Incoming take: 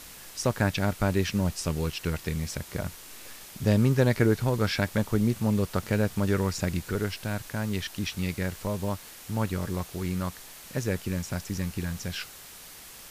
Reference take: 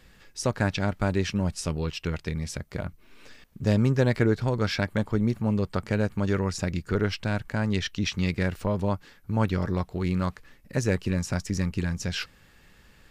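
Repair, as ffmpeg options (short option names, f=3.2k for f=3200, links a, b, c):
-af "afwtdn=0.0056,asetnsamples=n=441:p=0,asendcmd='6.91 volume volume 4dB',volume=0dB"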